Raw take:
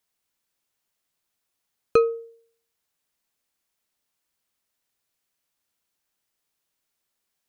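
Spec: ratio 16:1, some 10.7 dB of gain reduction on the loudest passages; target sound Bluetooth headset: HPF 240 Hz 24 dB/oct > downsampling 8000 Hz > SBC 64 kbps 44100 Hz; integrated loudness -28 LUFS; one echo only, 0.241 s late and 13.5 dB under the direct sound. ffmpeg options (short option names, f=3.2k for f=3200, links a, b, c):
-af "acompressor=threshold=-23dB:ratio=16,highpass=f=240:w=0.5412,highpass=f=240:w=1.3066,aecho=1:1:241:0.211,aresample=8000,aresample=44100,volume=5.5dB" -ar 44100 -c:a sbc -b:a 64k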